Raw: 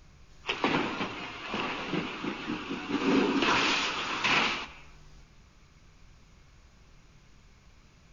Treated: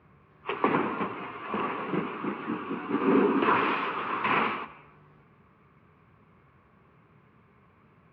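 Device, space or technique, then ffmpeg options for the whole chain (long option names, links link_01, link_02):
bass cabinet: -af "highpass=frequency=89:width=0.5412,highpass=frequency=89:width=1.3066,equalizer=frequency=210:width_type=q:width=4:gain=4,equalizer=frequency=420:width_type=q:width=4:gain=7,equalizer=frequency=1100:width_type=q:width=4:gain=7,lowpass=frequency=2300:width=0.5412,lowpass=frequency=2300:width=1.3066"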